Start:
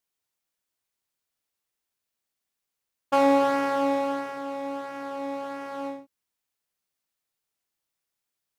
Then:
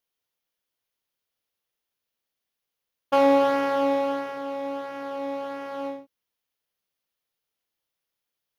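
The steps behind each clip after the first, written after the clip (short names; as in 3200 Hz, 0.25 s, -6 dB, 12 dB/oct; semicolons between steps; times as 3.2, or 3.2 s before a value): thirty-one-band EQ 500 Hz +5 dB, 3150 Hz +4 dB, 8000 Hz -11 dB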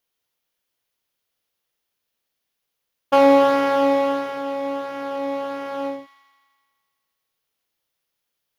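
thin delay 84 ms, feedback 73%, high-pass 1600 Hz, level -12 dB; gain +5 dB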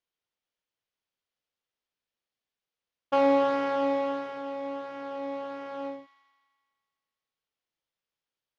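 air absorption 78 m; gain -8.5 dB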